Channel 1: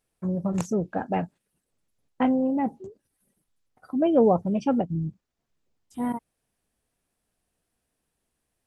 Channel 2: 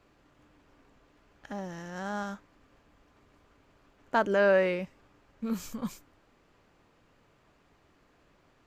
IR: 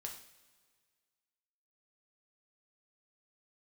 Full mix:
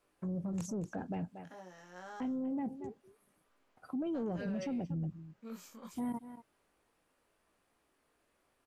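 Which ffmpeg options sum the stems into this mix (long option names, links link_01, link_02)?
-filter_complex "[0:a]volume=-3.5dB,asplit=2[link_01][link_02];[link_02]volume=-18.5dB[link_03];[1:a]flanger=delay=18.5:depth=3.6:speed=0.26,highpass=300,volume=-7.5dB[link_04];[link_03]aecho=0:1:232:1[link_05];[link_01][link_04][link_05]amix=inputs=3:normalize=0,acrossover=split=370|3000[link_06][link_07][link_08];[link_07]acompressor=threshold=-45dB:ratio=2[link_09];[link_06][link_09][link_08]amix=inputs=3:normalize=0,asoftclip=type=tanh:threshold=-21dB,alimiter=level_in=7.5dB:limit=-24dB:level=0:latency=1:release=48,volume=-7.5dB"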